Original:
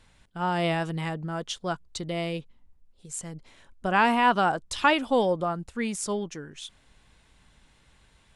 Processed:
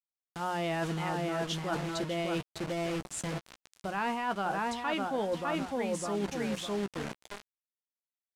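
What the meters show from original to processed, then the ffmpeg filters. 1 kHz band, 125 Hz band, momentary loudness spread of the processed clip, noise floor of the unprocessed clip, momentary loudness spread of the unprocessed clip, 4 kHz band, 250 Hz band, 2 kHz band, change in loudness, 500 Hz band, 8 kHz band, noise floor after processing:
-7.5 dB, -3.5 dB, 8 LU, -62 dBFS, 17 LU, -5.0 dB, -4.0 dB, -7.5 dB, -6.5 dB, -4.5 dB, -4.5 dB, under -85 dBFS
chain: -filter_complex "[0:a]highpass=46,bandreject=f=60:t=h:w=6,bandreject=f=120:t=h:w=6,bandreject=f=180:t=h:w=6,asplit=2[s0][s1];[s1]adelay=605,lowpass=f=2000:p=1,volume=0.631,asplit=2[s2][s3];[s3]adelay=605,lowpass=f=2000:p=1,volume=0.23,asplit=2[s4][s5];[s5]adelay=605,lowpass=f=2000:p=1,volume=0.23[s6];[s0][s2][s4][s6]amix=inputs=4:normalize=0,asplit=2[s7][s8];[s8]asoftclip=type=tanh:threshold=0.0708,volume=0.562[s9];[s7][s9]amix=inputs=2:normalize=0,acrusher=bits=5:mix=0:aa=0.000001,asplit=2[s10][s11];[s11]adelay=15,volume=0.251[s12];[s10][s12]amix=inputs=2:normalize=0,areverse,acompressor=threshold=0.0355:ratio=12,areverse,lowpass=9600,adynamicequalizer=threshold=0.00224:dfrequency=3700:dqfactor=0.7:tfrequency=3700:tqfactor=0.7:attack=5:release=100:ratio=0.375:range=2:mode=cutabove:tftype=highshelf"

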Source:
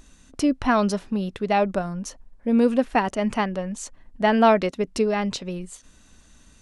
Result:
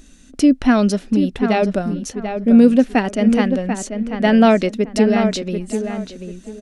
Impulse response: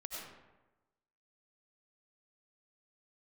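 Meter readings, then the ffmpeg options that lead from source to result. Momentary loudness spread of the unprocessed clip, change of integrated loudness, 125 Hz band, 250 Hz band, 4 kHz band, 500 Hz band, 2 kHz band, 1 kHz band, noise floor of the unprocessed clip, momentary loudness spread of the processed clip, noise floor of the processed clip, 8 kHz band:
16 LU, +6.5 dB, +7.5 dB, +9.5 dB, +5.0 dB, +5.0 dB, +4.0 dB, +0.5 dB, -54 dBFS, 13 LU, -45 dBFS, +5.0 dB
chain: -filter_complex "[0:a]equalizer=f=100:t=o:w=0.67:g=-11,equalizer=f=250:t=o:w=0.67:g=6,equalizer=f=1000:t=o:w=0.67:g=-10,asplit=2[s0][s1];[s1]adelay=739,lowpass=f=2300:p=1,volume=0.447,asplit=2[s2][s3];[s3]adelay=739,lowpass=f=2300:p=1,volume=0.26,asplit=2[s4][s5];[s5]adelay=739,lowpass=f=2300:p=1,volume=0.26[s6];[s0][s2][s4][s6]amix=inputs=4:normalize=0,volume=1.78"

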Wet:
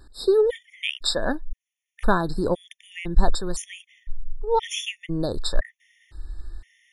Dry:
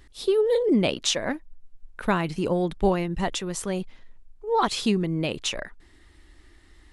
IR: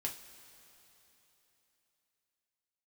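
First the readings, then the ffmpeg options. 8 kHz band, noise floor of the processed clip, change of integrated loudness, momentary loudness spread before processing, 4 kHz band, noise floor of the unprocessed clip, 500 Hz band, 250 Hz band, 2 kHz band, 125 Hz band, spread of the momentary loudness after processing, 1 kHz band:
-2.5 dB, under -85 dBFS, -0.5 dB, 11 LU, 0.0 dB, -54 dBFS, 0.0 dB, -4.5 dB, +1.0 dB, -2.0 dB, 21 LU, 0.0 dB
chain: -af "asubboost=boost=10.5:cutoff=53,afftfilt=real='re*gt(sin(2*PI*0.98*pts/sr)*(1-2*mod(floor(b*sr/1024/1800),2)),0)':imag='im*gt(sin(2*PI*0.98*pts/sr)*(1-2*mod(floor(b*sr/1024/1800),2)),0)':win_size=1024:overlap=0.75,volume=1.5"

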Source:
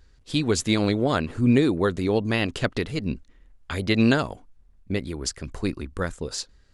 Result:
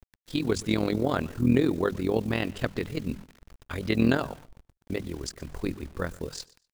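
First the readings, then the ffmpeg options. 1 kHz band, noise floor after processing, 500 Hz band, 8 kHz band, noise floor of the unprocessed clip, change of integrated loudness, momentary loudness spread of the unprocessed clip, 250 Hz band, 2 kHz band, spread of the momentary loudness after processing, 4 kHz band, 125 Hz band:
-4.0 dB, -82 dBFS, -3.5 dB, -8.5 dB, -56 dBFS, -4.0 dB, 12 LU, -3.5 dB, -5.5 dB, 14 LU, -7.5 dB, -4.5 dB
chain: -af "highshelf=f=2700:g=-6,bandreject=f=50:t=h:w=6,bandreject=f=100:t=h:w=6,bandreject=f=150:t=h:w=6,bandreject=f=200:t=h:w=6,acrusher=bits=7:mix=0:aa=0.000001,tremolo=f=42:d=0.75,aecho=1:1:122|244:0.0794|0.0183"

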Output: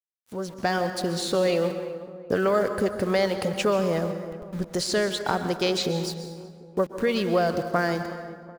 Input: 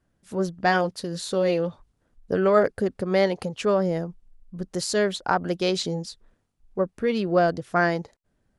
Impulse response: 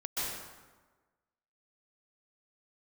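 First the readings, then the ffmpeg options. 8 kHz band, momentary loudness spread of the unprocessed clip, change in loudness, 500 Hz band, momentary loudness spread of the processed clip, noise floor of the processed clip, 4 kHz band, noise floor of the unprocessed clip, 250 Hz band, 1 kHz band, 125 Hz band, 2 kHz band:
+1.0 dB, 12 LU, -1.5 dB, -1.0 dB, 12 LU, -47 dBFS, +2.5 dB, -73 dBFS, -0.5 dB, -2.0 dB, -0.5 dB, -2.0 dB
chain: -filter_complex "[0:a]acrossover=split=600|4600[s0][s1][s2];[s0]acompressor=threshold=0.0282:ratio=4[s3];[s1]acompressor=threshold=0.0282:ratio=4[s4];[s2]acompressor=threshold=0.01:ratio=4[s5];[s3][s4][s5]amix=inputs=3:normalize=0,aeval=exprs='val(0)*gte(abs(val(0)),0.00631)':c=same,dynaudnorm=f=120:g=9:m=3.16,asplit=2[s6][s7];[s7]adelay=372,lowpass=f=1300:p=1,volume=0.188,asplit=2[s8][s9];[s9]adelay=372,lowpass=f=1300:p=1,volume=0.48,asplit=2[s10][s11];[s11]adelay=372,lowpass=f=1300:p=1,volume=0.48,asplit=2[s12][s13];[s13]adelay=372,lowpass=f=1300:p=1,volume=0.48[s14];[s6][s8][s10][s12][s14]amix=inputs=5:normalize=0,asplit=2[s15][s16];[1:a]atrim=start_sample=2205[s17];[s16][s17]afir=irnorm=-1:irlink=0,volume=0.237[s18];[s15][s18]amix=inputs=2:normalize=0,volume=0.531"

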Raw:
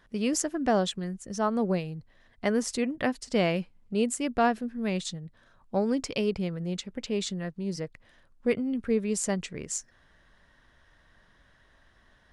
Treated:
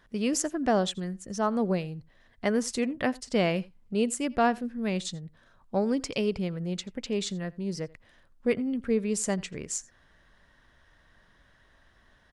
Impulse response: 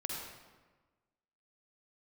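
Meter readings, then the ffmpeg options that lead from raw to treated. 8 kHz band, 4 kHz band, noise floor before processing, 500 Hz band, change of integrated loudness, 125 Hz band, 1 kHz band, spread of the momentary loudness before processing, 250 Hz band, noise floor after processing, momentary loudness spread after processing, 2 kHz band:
0.0 dB, 0.0 dB, -62 dBFS, 0.0 dB, 0.0 dB, 0.0 dB, 0.0 dB, 9 LU, 0.0 dB, -62 dBFS, 9 LU, 0.0 dB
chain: -af "aecho=1:1:85:0.0668"

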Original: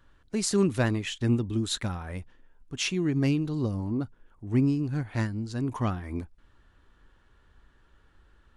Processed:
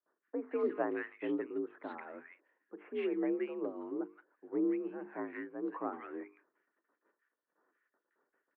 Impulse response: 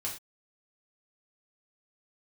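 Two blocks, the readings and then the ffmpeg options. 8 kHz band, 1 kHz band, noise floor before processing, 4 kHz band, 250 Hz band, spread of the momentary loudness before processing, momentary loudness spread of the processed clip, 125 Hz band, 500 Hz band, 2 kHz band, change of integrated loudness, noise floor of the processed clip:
under -40 dB, -5.0 dB, -62 dBFS, under -25 dB, -10.0 dB, 13 LU, 13 LU, under -30 dB, -3.0 dB, -9.0 dB, -9.5 dB, under -85 dBFS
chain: -filter_complex "[0:a]agate=range=0.0708:threshold=0.00158:ratio=16:detection=peak,bandreject=f=50:t=h:w=6,bandreject=f=100:t=h:w=6,bandreject=f=150:t=h:w=6,bandreject=f=200:t=h:w=6,bandreject=f=250:t=h:w=6,bandreject=f=300:t=h:w=6,bandreject=f=350:t=h:w=6,bandreject=f=400:t=h:w=6,highpass=f=250:t=q:w=0.5412,highpass=f=250:t=q:w=1.307,lowpass=f=2100:t=q:w=0.5176,lowpass=f=2100:t=q:w=0.7071,lowpass=f=2100:t=q:w=1.932,afreqshift=56,acrossover=split=1500[s0][s1];[s1]adelay=170[s2];[s0][s2]amix=inputs=2:normalize=0,volume=0.596"

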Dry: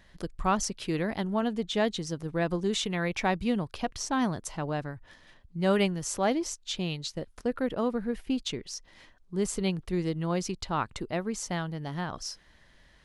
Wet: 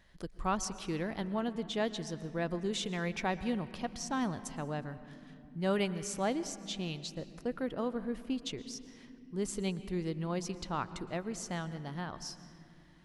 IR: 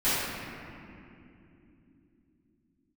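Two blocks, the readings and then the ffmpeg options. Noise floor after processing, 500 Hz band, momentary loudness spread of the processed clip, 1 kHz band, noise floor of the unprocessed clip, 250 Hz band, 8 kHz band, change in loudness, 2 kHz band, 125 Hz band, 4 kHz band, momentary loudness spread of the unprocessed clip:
-56 dBFS, -6.0 dB, 11 LU, -6.0 dB, -60 dBFS, -5.5 dB, -6.0 dB, -6.0 dB, -6.0 dB, -5.5 dB, -6.0 dB, 8 LU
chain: -filter_complex "[0:a]asplit=2[s0][s1];[1:a]atrim=start_sample=2205,adelay=111[s2];[s1][s2]afir=irnorm=-1:irlink=0,volume=0.0398[s3];[s0][s3]amix=inputs=2:normalize=0,volume=0.501"

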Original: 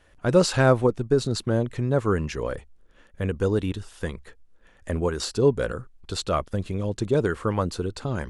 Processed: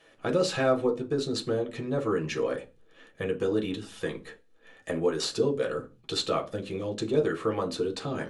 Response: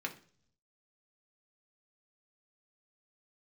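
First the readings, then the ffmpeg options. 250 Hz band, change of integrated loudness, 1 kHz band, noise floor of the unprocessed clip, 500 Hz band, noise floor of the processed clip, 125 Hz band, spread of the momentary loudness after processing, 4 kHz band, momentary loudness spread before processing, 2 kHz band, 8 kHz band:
-4.5 dB, -4.5 dB, -4.5 dB, -56 dBFS, -3.0 dB, -60 dBFS, -11.0 dB, 10 LU, 0.0 dB, 13 LU, -4.0 dB, -4.5 dB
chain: -filter_complex "[0:a]acompressor=threshold=0.0316:ratio=2[s0];[1:a]atrim=start_sample=2205,afade=t=out:st=0.4:d=0.01,atrim=end_sample=18081,asetrate=70560,aresample=44100[s1];[s0][s1]afir=irnorm=-1:irlink=0,volume=2"

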